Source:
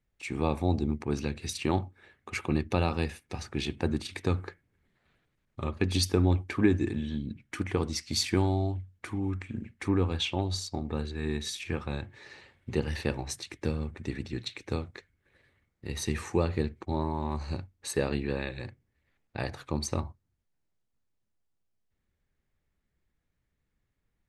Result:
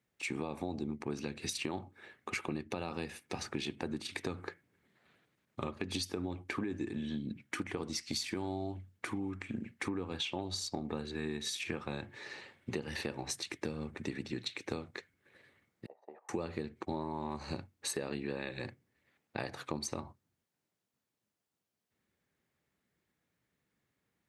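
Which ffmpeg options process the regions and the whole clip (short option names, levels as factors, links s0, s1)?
-filter_complex "[0:a]asettb=1/sr,asplit=3[s0][s1][s2];[s0]atrim=end=15.864[s3];[s1]atrim=start=15.86:end=16.29,asetpts=PTS-STARTPTS,afade=t=in:d=0.004:c=qsin,afade=t=out:st=0.426:d=0.004:c=qsin,agate=range=0.158:threshold=0.0178:ratio=16:release=100:detection=peak,asuperpass=centerf=690:order=4:qfactor=2.5[s4];[s2]atrim=start=16.286[s5];[s3][s4]acrossfade=d=0.004:c1=hsin:c2=qsin[s6];[s6][s5]acrossfade=d=0.004:c1=qsin:c2=hsin,highpass=160,alimiter=limit=0.112:level=0:latency=1:release=150,acompressor=threshold=0.0141:ratio=6,volume=1.41"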